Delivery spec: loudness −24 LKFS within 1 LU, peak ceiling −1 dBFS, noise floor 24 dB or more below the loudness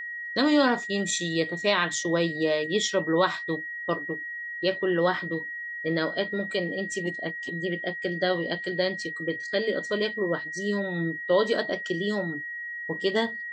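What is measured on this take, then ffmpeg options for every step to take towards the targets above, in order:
interfering tone 1,900 Hz; level of the tone −33 dBFS; integrated loudness −27.5 LKFS; sample peak −9.5 dBFS; target loudness −24.0 LKFS
→ -af "bandreject=frequency=1900:width=30"
-af "volume=3.5dB"

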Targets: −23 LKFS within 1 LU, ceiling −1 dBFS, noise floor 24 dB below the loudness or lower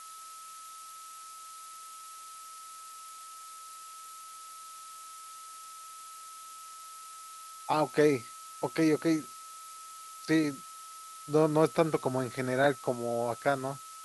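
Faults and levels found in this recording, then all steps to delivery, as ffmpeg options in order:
interfering tone 1,300 Hz; level of the tone −46 dBFS; background noise floor −47 dBFS; target noise floor −54 dBFS; integrated loudness −29.5 LKFS; sample peak −11.0 dBFS; target loudness −23.0 LKFS
→ -af "bandreject=frequency=1300:width=30"
-af "afftdn=noise_reduction=7:noise_floor=-47"
-af "volume=6.5dB"

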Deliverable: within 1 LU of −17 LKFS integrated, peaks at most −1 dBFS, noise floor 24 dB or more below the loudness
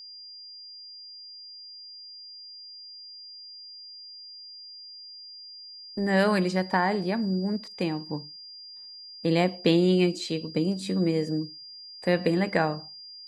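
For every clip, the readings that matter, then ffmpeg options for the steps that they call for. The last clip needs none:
interfering tone 4,800 Hz; level of the tone −42 dBFS; integrated loudness −26.5 LKFS; sample peak −8.5 dBFS; target loudness −17.0 LKFS
→ -af "bandreject=frequency=4800:width=30"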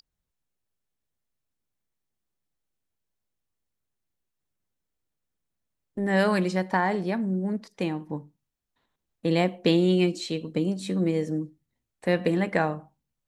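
interfering tone none found; integrated loudness −26.0 LKFS; sample peak −8.5 dBFS; target loudness −17.0 LKFS
→ -af "volume=9dB,alimiter=limit=-1dB:level=0:latency=1"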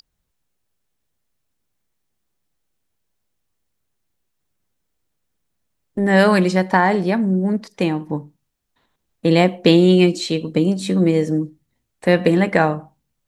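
integrated loudness −17.0 LKFS; sample peak −1.0 dBFS; background noise floor −74 dBFS

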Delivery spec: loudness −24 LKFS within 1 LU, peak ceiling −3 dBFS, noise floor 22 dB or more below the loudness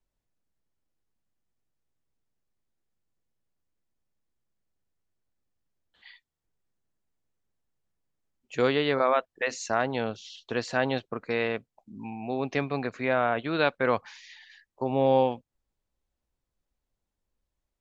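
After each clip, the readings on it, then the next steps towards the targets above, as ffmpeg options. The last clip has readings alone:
integrated loudness −28.0 LKFS; sample peak −9.5 dBFS; target loudness −24.0 LKFS
→ -af "volume=4dB"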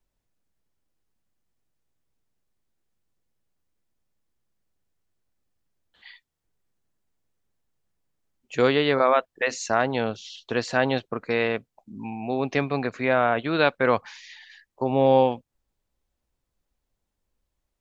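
integrated loudness −24.0 LKFS; sample peak −5.5 dBFS; background noise floor −81 dBFS

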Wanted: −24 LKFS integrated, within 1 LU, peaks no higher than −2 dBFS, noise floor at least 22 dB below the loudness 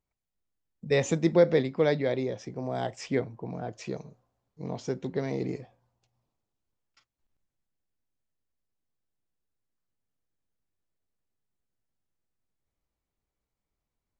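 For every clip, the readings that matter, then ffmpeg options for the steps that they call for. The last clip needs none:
integrated loudness −29.0 LKFS; sample peak −9.0 dBFS; target loudness −24.0 LKFS
→ -af "volume=5dB"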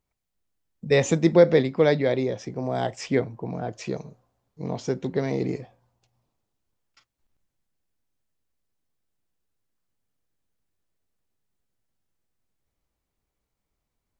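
integrated loudness −24.0 LKFS; sample peak −4.0 dBFS; background noise floor −82 dBFS

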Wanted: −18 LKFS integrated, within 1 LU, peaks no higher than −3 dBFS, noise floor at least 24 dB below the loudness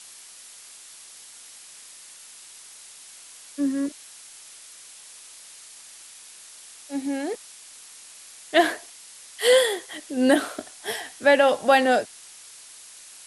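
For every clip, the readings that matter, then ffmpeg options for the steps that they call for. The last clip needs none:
background noise floor −46 dBFS; target noise floor −47 dBFS; integrated loudness −22.5 LKFS; sample peak −6.0 dBFS; target loudness −18.0 LKFS
→ -af "afftdn=noise_reduction=6:noise_floor=-46"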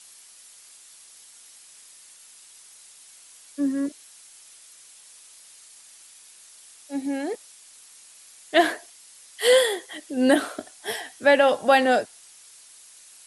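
background noise floor −50 dBFS; integrated loudness −22.5 LKFS; sample peak −6.0 dBFS; target loudness −18.0 LKFS
→ -af "volume=4.5dB,alimiter=limit=-3dB:level=0:latency=1"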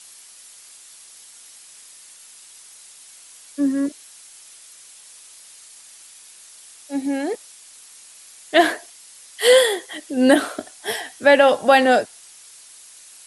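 integrated loudness −18.5 LKFS; sample peak −3.0 dBFS; background noise floor −46 dBFS

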